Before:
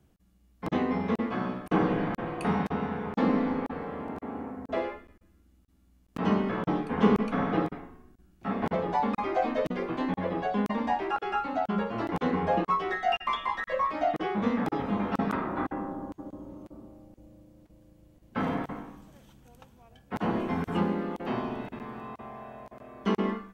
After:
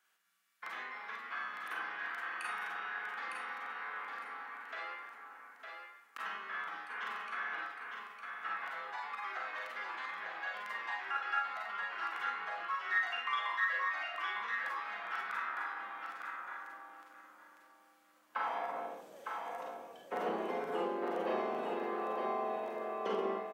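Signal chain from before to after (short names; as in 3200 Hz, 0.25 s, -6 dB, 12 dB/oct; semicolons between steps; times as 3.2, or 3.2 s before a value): compressor 3:1, threshold -36 dBFS, peak gain reduction 14.5 dB; high-pass sweep 1500 Hz -> 490 Hz, 17.92–19.06; feedback echo 0.907 s, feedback 17%, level -5 dB; Schroeder reverb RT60 0.32 s, combs from 33 ms, DRR -0.5 dB; gain -2.5 dB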